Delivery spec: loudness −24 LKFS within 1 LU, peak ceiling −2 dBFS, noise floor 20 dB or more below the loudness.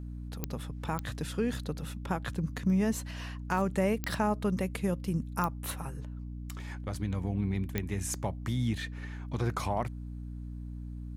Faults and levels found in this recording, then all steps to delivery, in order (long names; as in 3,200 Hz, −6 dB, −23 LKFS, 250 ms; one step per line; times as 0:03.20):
number of clicks 5; mains hum 60 Hz; hum harmonics up to 300 Hz; level of the hum −38 dBFS; integrated loudness −34.0 LKFS; sample peak −15.5 dBFS; target loudness −24.0 LKFS
→ click removal
hum removal 60 Hz, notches 5
level +10 dB